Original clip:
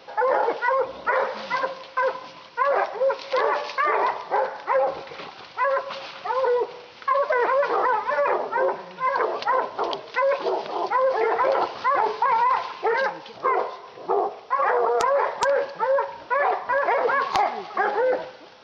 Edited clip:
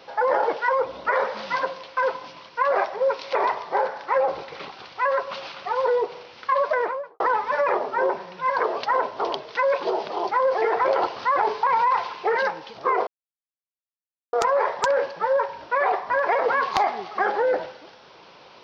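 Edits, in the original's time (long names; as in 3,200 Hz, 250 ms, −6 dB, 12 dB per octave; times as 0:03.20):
0:03.35–0:03.94: remove
0:07.25–0:07.79: fade out and dull
0:13.66–0:14.92: silence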